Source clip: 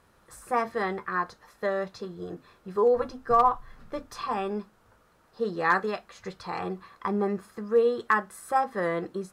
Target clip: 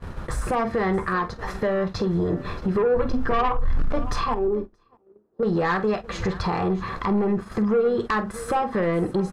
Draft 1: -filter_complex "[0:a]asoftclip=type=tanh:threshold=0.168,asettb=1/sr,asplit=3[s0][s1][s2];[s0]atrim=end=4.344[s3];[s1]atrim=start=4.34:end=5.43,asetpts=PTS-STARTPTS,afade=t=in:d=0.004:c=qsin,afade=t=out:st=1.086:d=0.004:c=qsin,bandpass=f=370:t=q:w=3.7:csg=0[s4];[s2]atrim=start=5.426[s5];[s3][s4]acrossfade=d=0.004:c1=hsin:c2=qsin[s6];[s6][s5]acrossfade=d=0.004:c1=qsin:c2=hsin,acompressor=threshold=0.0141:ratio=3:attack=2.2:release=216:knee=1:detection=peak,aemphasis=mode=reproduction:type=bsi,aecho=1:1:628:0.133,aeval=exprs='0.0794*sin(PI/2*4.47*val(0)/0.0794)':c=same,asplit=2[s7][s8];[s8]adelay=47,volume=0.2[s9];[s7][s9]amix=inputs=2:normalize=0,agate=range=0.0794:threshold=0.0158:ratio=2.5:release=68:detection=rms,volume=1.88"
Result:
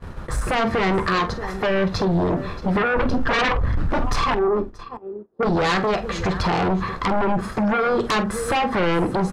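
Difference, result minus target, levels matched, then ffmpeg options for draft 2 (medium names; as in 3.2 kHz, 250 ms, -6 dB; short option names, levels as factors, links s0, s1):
compression: peak gain reduction -7.5 dB
-filter_complex "[0:a]asoftclip=type=tanh:threshold=0.168,asettb=1/sr,asplit=3[s0][s1][s2];[s0]atrim=end=4.344[s3];[s1]atrim=start=4.34:end=5.43,asetpts=PTS-STARTPTS,afade=t=in:d=0.004:c=qsin,afade=t=out:st=1.086:d=0.004:c=qsin,bandpass=f=370:t=q:w=3.7:csg=0[s4];[s2]atrim=start=5.426[s5];[s3][s4]acrossfade=d=0.004:c1=hsin:c2=qsin[s6];[s6][s5]acrossfade=d=0.004:c1=qsin:c2=hsin,acompressor=threshold=0.00398:ratio=3:attack=2.2:release=216:knee=1:detection=peak,aemphasis=mode=reproduction:type=bsi,aecho=1:1:628:0.133,aeval=exprs='0.0794*sin(PI/2*4.47*val(0)/0.0794)':c=same,asplit=2[s7][s8];[s8]adelay=47,volume=0.2[s9];[s7][s9]amix=inputs=2:normalize=0,agate=range=0.0794:threshold=0.0158:ratio=2.5:release=68:detection=rms,volume=1.88"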